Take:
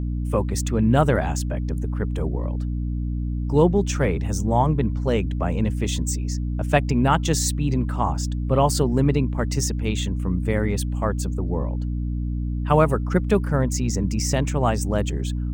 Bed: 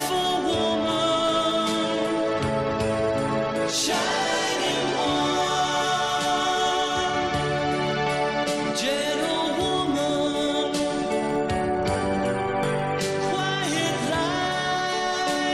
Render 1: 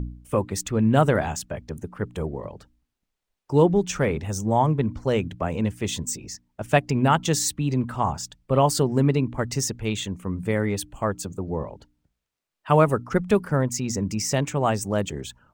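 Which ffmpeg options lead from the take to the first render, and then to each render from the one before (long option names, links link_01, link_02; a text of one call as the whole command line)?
ffmpeg -i in.wav -af "bandreject=frequency=60:width_type=h:width=4,bandreject=frequency=120:width_type=h:width=4,bandreject=frequency=180:width_type=h:width=4,bandreject=frequency=240:width_type=h:width=4,bandreject=frequency=300:width_type=h:width=4" out.wav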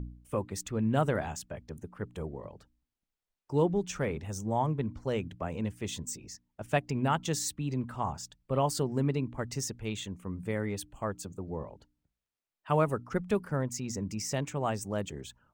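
ffmpeg -i in.wav -af "volume=-9dB" out.wav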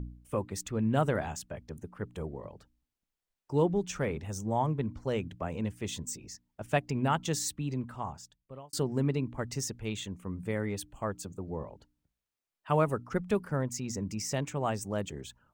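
ffmpeg -i in.wav -filter_complex "[0:a]asplit=2[link_01][link_02];[link_01]atrim=end=8.73,asetpts=PTS-STARTPTS,afade=type=out:start_time=7.58:duration=1.15[link_03];[link_02]atrim=start=8.73,asetpts=PTS-STARTPTS,afade=type=in:duration=0.004:curve=hsin[link_04];[link_03][link_04]concat=n=2:v=0:a=1" out.wav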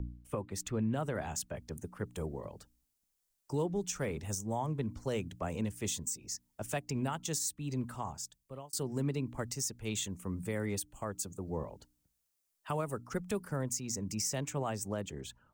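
ffmpeg -i in.wav -filter_complex "[0:a]acrossover=split=300|550|5500[link_01][link_02][link_03][link_04];[link_04]dynaudnorm=framelen=340:gausssize=9:maxgain=12dB[link_05];[link_01][link_02][link_03][link_05]amix=inputs=4:normalize=0,alimiter=level_in=0.5dB:limit=-24dB:level=0:latency=1:release=348,volume=-0.5dB" out.wav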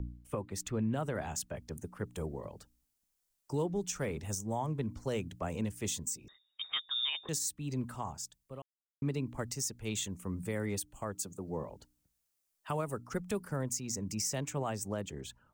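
ffmpeg -i in.wav -filter_complex "[0:a]asettb=1/sr,asplit=3[link_01][link_02][link_03];[link_01]atrim=end=6.284[link_04];[link_02]atrim=start=6.28:end=7.29,asetpts=PTS-STARTPTS,afade=type=in:duration=0.004:curve=qsin,afade=type=out:start_time=1.006:duration=0.004:curve=qsin,lowpass=frequency=3200:width_type=q:width=0.5098,lowpass=frequency=3200:width_type=q:width=0.6013,lowpass=frequency=3200:width_type=q:width=0.9,lowpass=frequency=3200:width_type=q:width=2.563,afreqshift=-3800[link_05];[link_03]atrim=start=7.286[link_06];[link_04][link_05]acrossfade=duration=0.004:curve1=hsin:curve2=qsin[link_07];[link_07][link_06]acrossfade=duration=0.004:curve1=qsin:curve2=hsin,asettb=1/sr,asplit=3[link_08][link_09][link_10];[link_08]atrim=end=11.154[link_11];[link_09]atrim=start=11.15:end=11.7,asetpts=PTS-STARTPTS,afade=type=in:duration=0.004:curve=qsin,afade=type=out:start_time=0.546:duration=0.004:curve=qsin,highpass=110[link_12];[link_10]atrim=start=11.696[link_13];[link_11][link_12]acrossfade=duration=0.004:curve1=hsin:curve2=qsin[link_14];[link_14][link_13]acrossfade=duration=0.004:curve1=qsin:curve2=hsin,asplit=3[link_15][link_16][link_17];[link_15]atrim=end=8.62,asetpts=PTS-STARTPTS,afade=type=out:start_time=8.616:duration=0.004:curve=hsin[link_18];[link_16]atrim=start=8.62:end=9.02,asetpts=PTS-STARTPTS,volume=0[link_19];[link_17]atrim=start=9.02,asetpts=PTS-STARTPTS,afade=type=in:duration=0.004:curve=hsin[link_20];[link_18][link_19][link_20]concat=n=3:v=0:a=1" out.wav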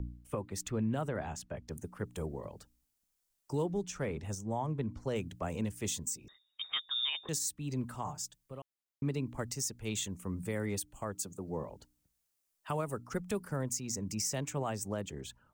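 ffmpeg -i in.wav -filter_complex "[0:a]asettb=1/sr,asplit=3[link_01][link_02][link_03];[link_01]atrim=end=1.084[link_04];[link_02]atrim=start=1.08:end=1.68,asetpts=PTS-STARTPTS,afade=type=in:duration=0.004:curve=qsin,afade=type=out:start_time=0.596:duration=0.004:curve=qsin,lowpass=frequency=2900:poles=1[link_05];[link_03]atrim=start=1.676[link_06];[link_04][link_05]acrossfade=duration=0.004:curve1=hsin:curve2=qsin[link_07];[link_07][link_06]acrossfade=duration=0.004:curve1=qsin:curve2=hsin,asettb=1/sr,asplit=3[link_08][link_09][link_10];[link_08]atrim=end=3.814[link_11];[link_09]atrim=start=3.81:end=5.16,asetpts=PTS-STARTPTS,afade=type=in:duration=0.004:curve=qsin,afade=type=out:start_time=1.346:duration=0.004:curve=qsin,lowpass=frequency=3600:poles=1[link_12];[link_10]atrim=start=5.156[link_13];[link_11][link_12]acrossfade=duration=0.004:curve1=hsin:curve2=qsin[link_14];[link_14][link_13]acrossfade=duration=0.004:curve1=qsin:curve2=hsin,asettb=1/sr,asplit=3[link_15][link_16][link_17];[link_15]atrim=end=8.044[link_18];[link_16]atrim=start=8.04:end=8.52,asetpts=PTS-STARTPTS,afade=type=in:duration=0.004:curve=qsin,afade=type=out:start_time=0.476:duration=0.004:curve=qsin,aecho=1:1:6.7:0.74,atrim=end_sample=21168[link_19];[link_17]atrim=start=8.516[link_20];[link_18][link_19]acrossfade=duration=0.004:curve1=hsin:curve2=qsin[link_21];[link_21][link_20]acrossfade=duration=0.004:curve1=qsin:curve2=hsin" out.wav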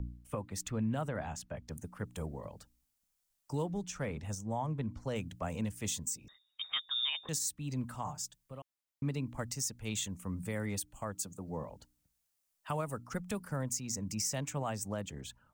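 ffmpeg -i in.wav -af "equalizer=frequency=380:width=3.4:gain=-8.5" out.wav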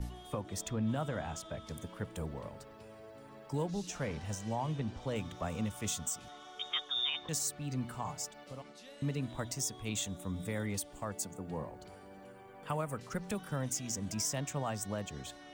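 ffmpeg -i in.wav -i bed.wav -filter_complex "[1:a]volume=-28.5dB[link_01];[0:a][link_01]amix=inputs=2:normalize=0" out.wav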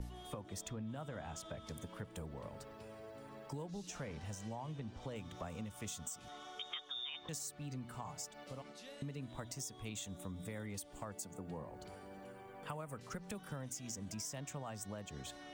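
ffmpeg -i in.wav -af "acompressor=threshold=-43dB:ratio=4" out.wav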